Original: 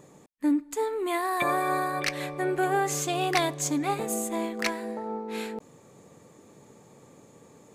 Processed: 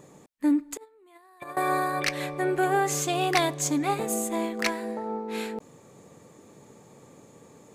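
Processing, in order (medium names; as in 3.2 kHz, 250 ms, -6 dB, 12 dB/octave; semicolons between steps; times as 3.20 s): 0.77–1.57 s: gate -22 dBFS, range -29 dB; trim +1.5 dB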